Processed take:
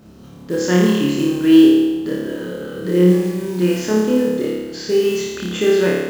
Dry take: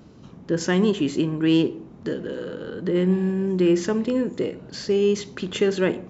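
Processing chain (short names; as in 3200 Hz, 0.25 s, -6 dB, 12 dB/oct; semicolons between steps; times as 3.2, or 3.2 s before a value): companded quantiser 6-bit; flutter echo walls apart 4.8 m, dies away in 1.2 s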